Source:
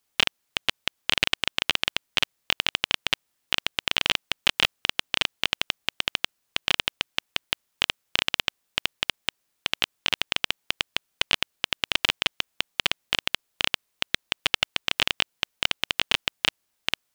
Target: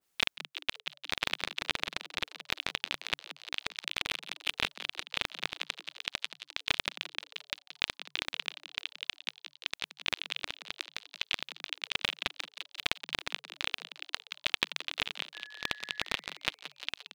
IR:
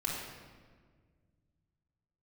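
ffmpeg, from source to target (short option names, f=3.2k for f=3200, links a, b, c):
-filter_complex "[0:a]agate=range=-49dB:threshold=-35dB:ratio=16:detection=peak,acompressor=mode=upward:threshold=-30dB:ratio=2.5,aeval=exprs='val(0)*sin(2*PI*440*n/s)':c=same,asettb=1/sr,asplit=3[a][b][c];[a]atrim=end=3.684[d];[b]atrim=start=3.68:end=4.51,asetpts=PTS-STARTPTS,afade=t=in:d=0.004:c=qsin,afade=t=out:st=0.826:d=0.004:c=qsin,adynamicsmooth=sensitivity=5:basefreq=1.4k[e];[c]atrim=start=4.506[f];[d][e]acrossfade=d=0.004:c1=hsin:c2=qsin[g];[g][f]acrossfade=d=0.004:c1=qsin:c2=hsin,asplit=3[h][i][j];[h]afade=t=out:st=12.52:d=0.02[k];[i]acrusher=bits=4:mix=0:aa=0.5,afade=t=in:st=12.52:d=0.02,afade=t=out:st=13.16:d=0.02[l];[j]afade=t=in:st=13.16:d=0.02[m];[k][l][m]amix=inputs=3:normalize=0,asettb=1/sr,asplit=3[n][o][p];[n]atrim=end=15.344[q];[o]atrim=start=15.34:end=16.03,asetpts=PTS-STARTPTS,afade=t=in:d=0.004:c=qsin,afade=t=out:st=0.686:d=0.004:c=qsin,aeval=exprs='val(0)+0.00708*sin(2*PI*1700*n/s)':c=same[r];[p]atrim=start=16.026[s];[q][r]acrossfade=d=0.004:c1=hsin:c2=qsin[t];[t][s]acrossfade=d=0.004:c1=qsin:c2=hsin,asplit=8[u][v][w][x][y][z][aa][ab];[v]adelay=175,afreqshift=140,volume=-12dB[ac];[w]adelay=350,afreqshift=280,volume=-16.4dB[ad];[x]adelay=525,afreqshift=420,volume=-20.9dB[ae];[y]adelay=700,afreqshift=560,volume=-25.3dB[af];[z]adelay=875,afreqshift=700,volume=-29.7dB[ag];[aa]adelay=1050,afreqshift=840,volume=-34.2dB[ah];[ab]adelay=1225,afreqshift=980,volume=-38.6dB[ai];[u][ac][ad][ae][af][ag][ah][ai]amix=inputs=8:normalize=0,adynamicequalizer=threshold=0.00794:dfrequency=2000:dqfactor=0.7:tfrequency=2000:tqfactor=0.7:attack=5:release=100:ratio=0.375:range=2.5:mode=cutabove:tftype=highshelf,volume=-3.5dB"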